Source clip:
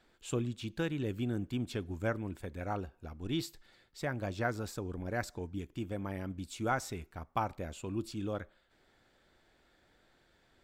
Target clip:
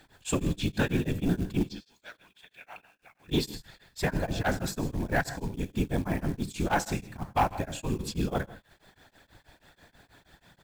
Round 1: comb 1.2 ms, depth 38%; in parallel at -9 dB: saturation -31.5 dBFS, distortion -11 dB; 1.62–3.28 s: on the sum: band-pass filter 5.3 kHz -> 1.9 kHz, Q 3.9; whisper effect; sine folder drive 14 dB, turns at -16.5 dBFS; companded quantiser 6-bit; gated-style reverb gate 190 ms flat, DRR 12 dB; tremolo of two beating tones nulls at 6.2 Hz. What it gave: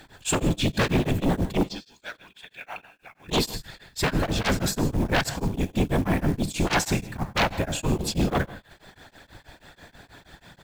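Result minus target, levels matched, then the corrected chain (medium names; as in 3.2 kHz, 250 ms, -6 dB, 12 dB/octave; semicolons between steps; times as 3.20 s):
sine folder: distortion +15 dB
comb 1.2 ms, depth 38%; in parallel at -9 dB: saturation -31.5 dBFS, distortion -11 dB; 1.62–3.28 s: on the sum: band-pass filter 5.3 kHz -> 1.9 kHz, Q 3.9; whisper effect; sine folder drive 5 dB, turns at -16.5 dBFS; companded quantiser 6-bit; gated-style reverb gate 190 ms flat, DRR 12 dB; tremolo of two beating tones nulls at 6.2 Hz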